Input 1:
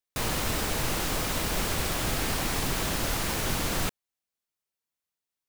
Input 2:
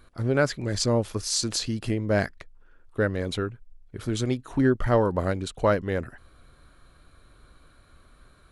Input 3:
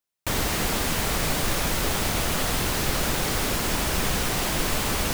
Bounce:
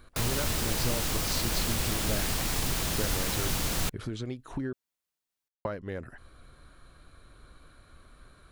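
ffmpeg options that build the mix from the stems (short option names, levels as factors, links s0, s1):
-filter_complex "[0:a]acrossover=split=170|3000[s0][s1][s2];[s1]acompressor=threshold=0.0178:ratio=6[s3];[s0][s3][s2]amix=inputs=3:normalize=0,volume=1.06[s4];[1:a]acrossover=split=5500[s5][s6];[s6]acompressor=threshold=0.00224:ratio=4:attack=1:release=60[s7];[s5][s7]amix=inputs=2:normalize=0,volume=1.06,asplit=3[s8][s9][s10];[s8]atrim=end=4.73,asetpts=PTS-STARTPTS,afade=t=out:st=4.726:d=0.004:c=hsin[s11];[s9]atrim=start=4.73:end=5.65,asetpts=PTS-STARTPTS,volume=0[s12];[s10]atrim=start=5.65,asetpts=PTS-STARTPTS,afade=t=in:d=0.004:c=hsin[s13];[s11][s12][s13]concat=n=3:v=0:a=1,acompressor=threshold=0.0224:ratio=5,volume=1[s14];[s4][s14]amix=inputs=2:normalize=0"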